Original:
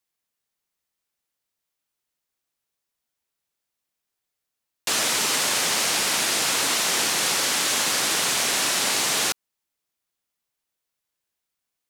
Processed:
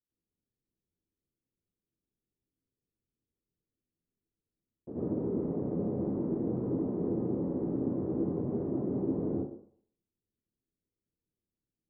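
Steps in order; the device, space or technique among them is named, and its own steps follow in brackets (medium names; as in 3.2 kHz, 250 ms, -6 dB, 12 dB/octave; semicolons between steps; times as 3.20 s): next room (low-pass 390 Hz 24 dB/octave; reverberation RT60 0.60 s, pre-delay 74 ms, DRR -9 dB); trim -2 dB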